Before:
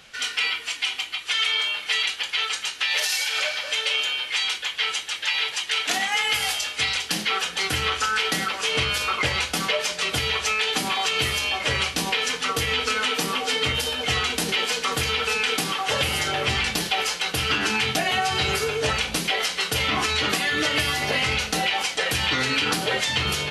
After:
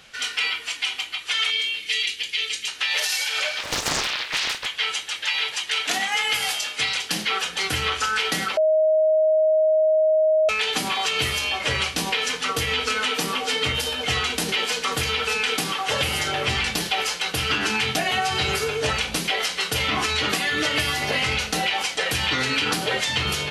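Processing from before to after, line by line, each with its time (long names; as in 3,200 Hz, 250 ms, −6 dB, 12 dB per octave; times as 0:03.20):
0:01.50–0:02.68: flat-topped bell 960 Hz −15 dB
0:03.59–0:04.66: highs frequency-modulated by the lows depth 0.93 ms
0:06.00–0:07.11: high-pass filter 120 Hz
0:08.57–0:10.49: beep over 627 Hz −15 dBFS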